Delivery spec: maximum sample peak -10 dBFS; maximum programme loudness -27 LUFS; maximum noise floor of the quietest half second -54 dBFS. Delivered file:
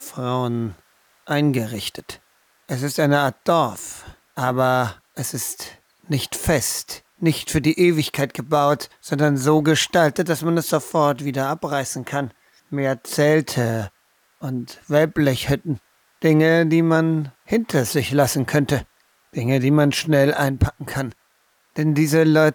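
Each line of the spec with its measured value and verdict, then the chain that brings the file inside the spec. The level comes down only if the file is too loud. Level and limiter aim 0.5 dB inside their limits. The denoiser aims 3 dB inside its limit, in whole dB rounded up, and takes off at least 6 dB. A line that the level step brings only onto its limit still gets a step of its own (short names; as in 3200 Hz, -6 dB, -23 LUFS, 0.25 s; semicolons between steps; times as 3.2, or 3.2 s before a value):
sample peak -6.0 dBFS: fail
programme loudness -20.5 LUFS: fail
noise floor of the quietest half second -63 dBFS: OK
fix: gain -7 dB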